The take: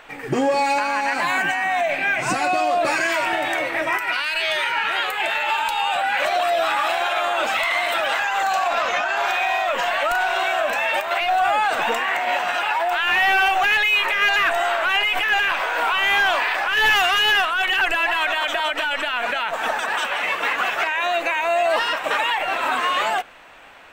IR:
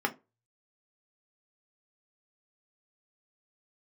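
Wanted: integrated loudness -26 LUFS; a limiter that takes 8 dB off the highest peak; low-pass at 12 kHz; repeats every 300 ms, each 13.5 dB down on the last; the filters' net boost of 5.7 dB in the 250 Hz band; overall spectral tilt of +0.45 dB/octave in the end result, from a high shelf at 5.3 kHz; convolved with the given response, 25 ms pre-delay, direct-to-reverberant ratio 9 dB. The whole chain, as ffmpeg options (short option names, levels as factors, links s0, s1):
-filter_complex "[0:a]lowpass=12000,equalizer=f=250:t=o:g=7,highshelf=f=5300:g=-6.5,alimiter=limit=0.188:level=0:latency=1,aecho=1:1:300|600:0.211|0.0444,asplit=2[s0][s1];[1:a]atrim=start_sample=2205,adelay=25[s2];[s1][s2]afir=irnorm=-1:irlink=0,volume=0.126[s3];[s0][s3]amix=inputs=2:normalize=0,volume=0.562"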